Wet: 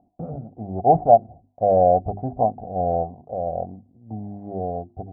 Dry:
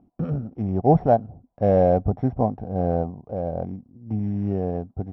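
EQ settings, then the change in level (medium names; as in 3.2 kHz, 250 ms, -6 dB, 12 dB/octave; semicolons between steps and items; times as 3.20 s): resonant low-pass 720 Hz, resonance Q 5.2; peaking EQ 84 Hz +2.5 dB; hum notches 50/100/150/200/250/300/350/400 Hz; -6.5 dB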